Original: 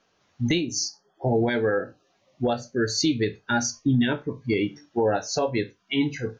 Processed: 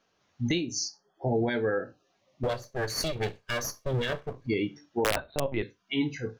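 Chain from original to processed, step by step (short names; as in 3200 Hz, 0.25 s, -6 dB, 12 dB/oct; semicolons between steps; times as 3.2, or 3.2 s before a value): 2.43–4.47 minimum comb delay 1.8 ms; 5.04–5.63 LPC vocoder at 8 kHz pitch kept; wrapped overs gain 11.5 dB; gain -4.5 dB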